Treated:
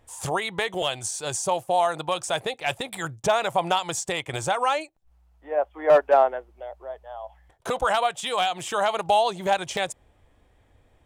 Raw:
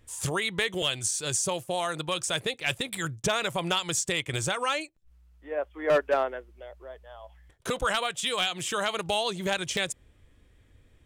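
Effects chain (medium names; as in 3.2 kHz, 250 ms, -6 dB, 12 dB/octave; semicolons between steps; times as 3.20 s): peaking EQ 780 Hz +14.5 dB 1 oct; trim -2 dB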